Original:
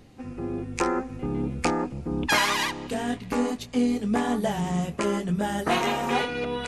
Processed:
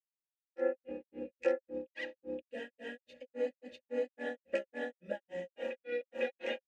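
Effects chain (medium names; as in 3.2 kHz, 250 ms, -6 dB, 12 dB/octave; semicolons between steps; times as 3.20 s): granulator 203 ms, grains 3.6 per s, spray 709 ms, pitch spread up and down by 0 st; vowel filter e; comb 3.6 ms, depth 85%; trim +2 dB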